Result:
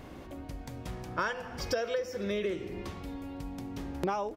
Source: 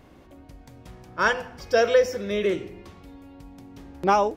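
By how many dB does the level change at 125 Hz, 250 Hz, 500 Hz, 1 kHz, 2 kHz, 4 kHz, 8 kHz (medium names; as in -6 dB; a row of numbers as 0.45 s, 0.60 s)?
-0.5 dB, -4.0 dB, -11.0 dB, -11.5 dB, -11.0 dB, -7.5 dB, no reading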